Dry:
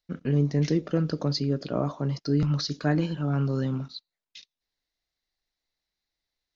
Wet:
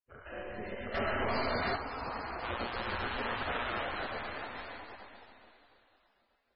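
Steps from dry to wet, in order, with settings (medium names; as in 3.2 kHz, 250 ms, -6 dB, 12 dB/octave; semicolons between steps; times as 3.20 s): Schroeder reverb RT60 3.6 s, combs from 33 ms, DRR -9 dB; peak limiter -11 dBFS, peak gain reduction 6.5 dB; 2.42–3.82 s: mains buzz 120 Hz, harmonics 33, -34 dBFS -1 dB/octave; spectral gate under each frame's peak -20 dB weak; ever faster or slower copies 695 ms, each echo +2 st, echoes 3; distance through air 420 m; 0.94–1.76 s: waveshaping leveller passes 3; trim -2.5 dB; MP3 16 kbps 24 kHz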